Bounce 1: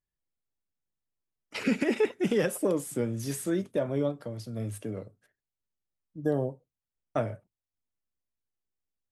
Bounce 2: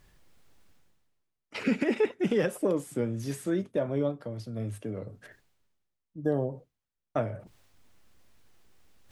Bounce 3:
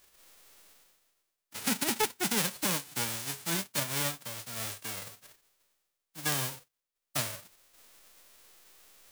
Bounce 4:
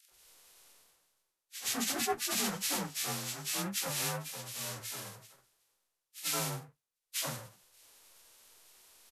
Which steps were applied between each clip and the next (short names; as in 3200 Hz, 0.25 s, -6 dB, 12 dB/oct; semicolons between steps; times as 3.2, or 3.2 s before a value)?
high shelf 6100 Hz -10 dB; reverse; upward compressor, threshold -35 dBFS; reverse
spectral whitening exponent 0.1; gain -3.5 dB
inharmonic rescaling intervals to 89%; three bands offset in time highs, mids, lows 80/110 ms, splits 270/1800 Hz